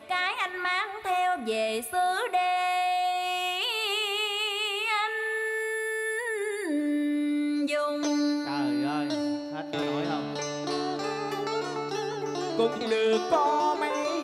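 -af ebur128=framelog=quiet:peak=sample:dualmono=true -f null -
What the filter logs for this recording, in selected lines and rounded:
Integrated loudness:
  I:         -24.9 LUFS
  Threshold: -34.9 LUFS
Loudness range:
  LRA:         3.6 LU
  Threshold: -45.1 LUFS
  LRA low:   -27.3 LUFS
  LRA high:  -23.8 LUFS
Sample peak:
  Peak:      -12.2 dBFS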